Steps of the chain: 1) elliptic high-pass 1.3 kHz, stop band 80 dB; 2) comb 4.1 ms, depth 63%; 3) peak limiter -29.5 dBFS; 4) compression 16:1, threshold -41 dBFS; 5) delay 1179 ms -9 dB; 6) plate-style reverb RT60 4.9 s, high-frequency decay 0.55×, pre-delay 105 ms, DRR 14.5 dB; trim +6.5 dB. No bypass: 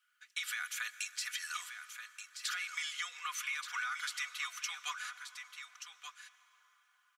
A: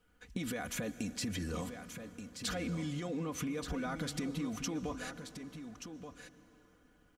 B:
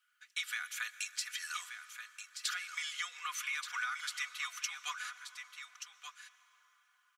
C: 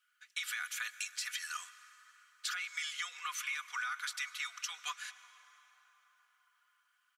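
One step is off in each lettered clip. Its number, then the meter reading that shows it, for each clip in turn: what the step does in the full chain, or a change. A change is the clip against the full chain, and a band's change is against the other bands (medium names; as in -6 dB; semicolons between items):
1, 2 kHz band -5.5 dB; 3, crest factor change +2.5 dB; 5, echo-to-direct -8.0 dB to -14.5 dB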